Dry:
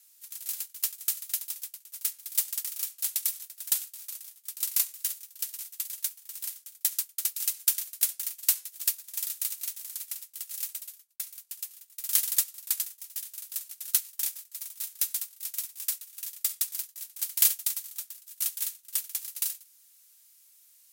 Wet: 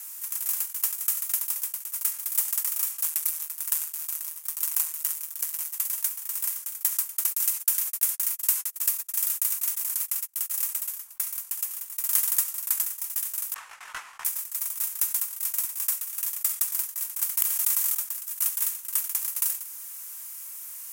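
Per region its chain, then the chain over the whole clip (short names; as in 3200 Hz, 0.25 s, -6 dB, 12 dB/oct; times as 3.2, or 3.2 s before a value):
3.04–5.74 notches 60/120/180/240/300/360/420 Hz + ring modulator 78 Hz
7.27–10.5 G.711 law mismatch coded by mu + gate -41 dBFS, range -49 dB + HPF 1100 Hz 6 dB/oct
13.54–14.25 LPF 1800 Hz + detuned doubles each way 13 cents
17.38–17.95 flipped gate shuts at -11 dBFS, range -24 dB + fast leveller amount 70%
whole clip: ten-band EQ 125 Hz -6 dB, 250 Hz -11 dB, 500 Hz -9 dB, 1000 Hz +9 dB, 4000 Hz -11 dB; fast leveller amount 50%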